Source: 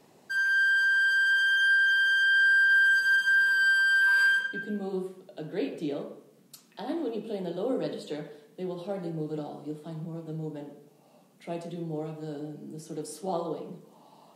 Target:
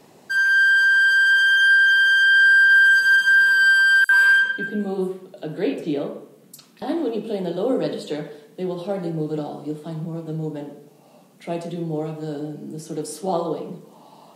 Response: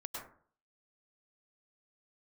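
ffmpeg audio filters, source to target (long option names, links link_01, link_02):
-filter_complex "[0:a]asettb=1/sr,asplit=3[link_01][link_02][link_03];[link_01]atrim=end=4.044[link_04];[link_02]atrim=start=4.04:end=6.82,asetpts=PTS-STARTPTS,afade=type=in:duration=0.004:curve=qsin,afade=type=out:start_time=2.776:duration=0.004:curve=qsin,acrossover=split=5300[link_05][link_06];[link_05]adelay=50[link_07];[link_07][link_06]amix=inputs=2:normalize=0,atrim=end_sample=122598[link_08];[link_03]atrim=start=6.816[link_09];[link_04][link_08]acrossfade=duration=0.004:curve1=hsin:curve2=qsin[link_10];[link_10][link_09]acrossfade=duration=0.004:curve1=qsin:curve2=hsin,volume=8dB"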